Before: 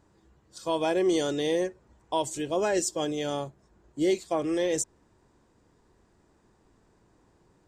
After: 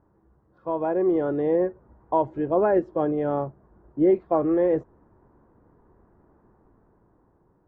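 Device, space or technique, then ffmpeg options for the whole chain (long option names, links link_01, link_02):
action camera in a waterproof case: -af "lowpass=frequency=1400:width=0.5412,lowpass=frequency=1400:width=1.3066,dynaudnorm=framelen=280:gausssize=9:maxgain=6dB" -ar 44100 -c:a aac -b:a 64k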